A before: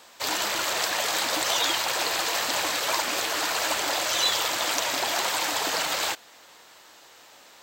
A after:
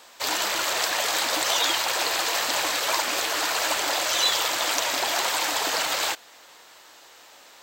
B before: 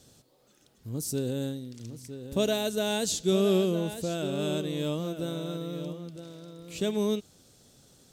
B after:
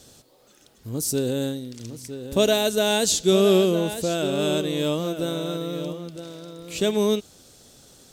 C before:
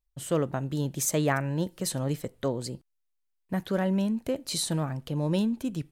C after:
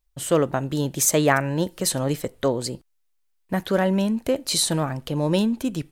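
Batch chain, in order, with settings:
parametric band 140 Hz −5.5 dB 1.8 octaves
loudness normalisation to −23 LKFS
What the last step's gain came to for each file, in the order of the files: +1.5, +8.5, +8.5 decibels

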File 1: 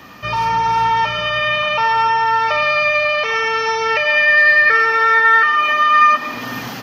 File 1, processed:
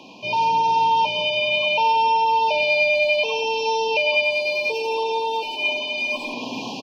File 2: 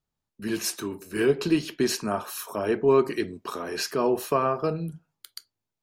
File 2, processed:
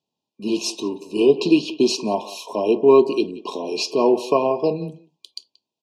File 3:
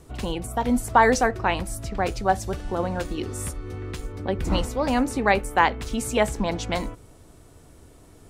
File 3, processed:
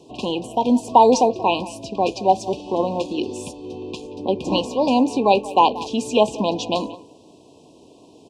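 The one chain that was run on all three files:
Chebyshev band-pass filter 250–4,800 Hz, order 2
far-end echo of a speakerphone 180 ms, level −17 dB
brick-wall band-stop 1,100–2,400 Hz
loudness normalisation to −20 LKFS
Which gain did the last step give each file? 0.0, +7.5, +6.5 decibels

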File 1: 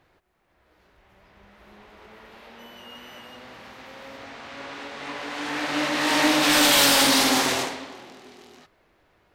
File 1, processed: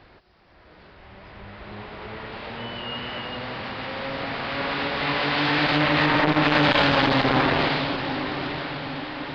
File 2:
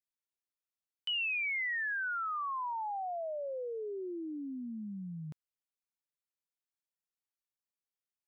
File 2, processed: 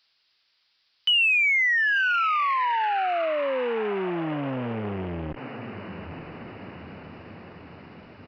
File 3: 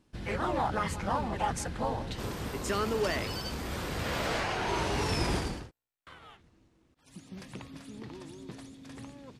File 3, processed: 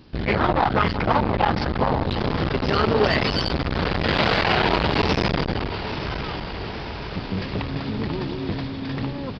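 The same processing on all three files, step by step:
sub-octave generator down 1 octave, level −2 dB
treble cut that deepens with the level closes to 2,000 Hz, closed at −18.5 dBFS
dynamic equaliser 3,800 Hz, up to +3 dB, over −41 dBFS, Q 0.9
in parallel at +1 dB: downward compressor, threshold −33 dBFS
on the sum: background noise violet −57 dBFS
asymmetric clip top −22.5 dBFS, bottom −9.5 dBFS
on a send: feedback delay with all-pass diffusion 953 ms, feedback 62%, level −13 dB
on the sum: downsampling to 11,025 Hz
saturating transformer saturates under 760 Hz
loudness normalisation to −23 LKFS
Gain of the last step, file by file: +4.5, +6.5, +11.0 decibels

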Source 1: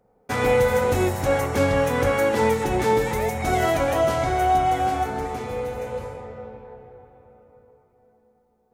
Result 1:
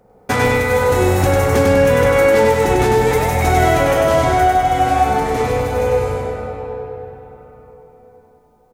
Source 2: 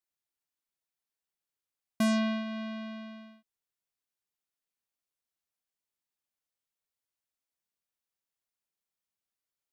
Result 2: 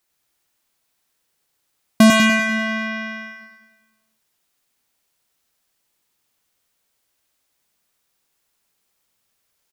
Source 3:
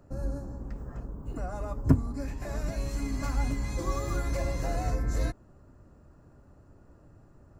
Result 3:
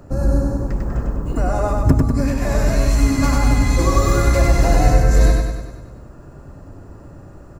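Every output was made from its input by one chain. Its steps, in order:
downward compressor, threshold −25 dBFS
on a send: repeating echo 98 ms, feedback 56%, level −3 dB
on the sum: normalise the peak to −1.5 dBFS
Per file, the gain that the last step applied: +11.0, +17.5, +14.5 decibels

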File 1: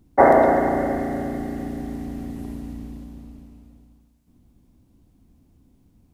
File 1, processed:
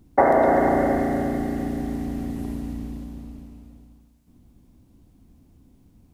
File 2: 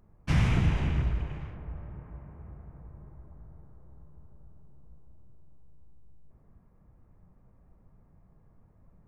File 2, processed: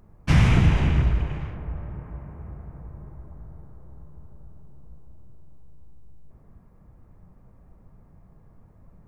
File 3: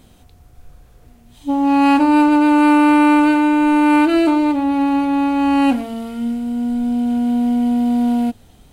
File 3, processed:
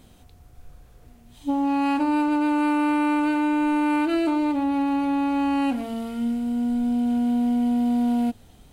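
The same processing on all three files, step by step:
downward compressor 6 to 1, threshold −16 dBFS
loudness normalisation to −23 LKFS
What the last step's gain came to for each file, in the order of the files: +3.0, +7.5, −3.5 decibels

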